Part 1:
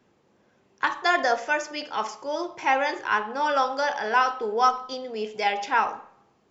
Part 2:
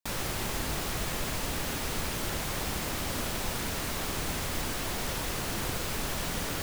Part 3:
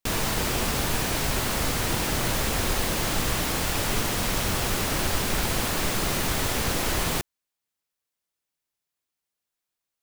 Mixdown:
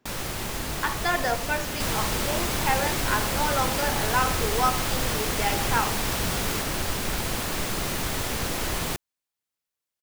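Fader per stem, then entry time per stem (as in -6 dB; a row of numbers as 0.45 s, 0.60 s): -3.5 dB, +1.5 dB, -2.5 dB; 0.00 s, 0.00 s, 1.75 s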